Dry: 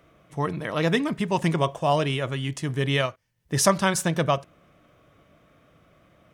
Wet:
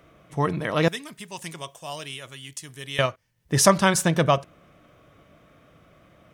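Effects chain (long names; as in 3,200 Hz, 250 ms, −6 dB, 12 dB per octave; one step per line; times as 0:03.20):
0:00.88–0:02.99: first-order pre-emphasis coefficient 0.9
level +3 dB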